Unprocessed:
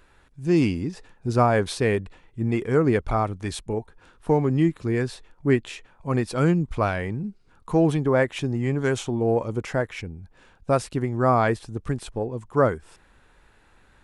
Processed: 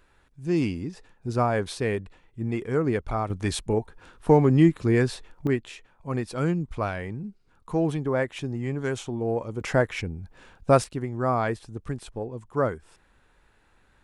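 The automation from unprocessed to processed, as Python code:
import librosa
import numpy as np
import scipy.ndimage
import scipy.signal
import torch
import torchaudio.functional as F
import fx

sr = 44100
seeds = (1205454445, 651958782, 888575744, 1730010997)

y = fx.gain(x, sr, db=fx.steps((0.0, -4.5), (3.3, 3.0), (5.47, -5.0), (9.61, 3.0), (10.84, -5.0)))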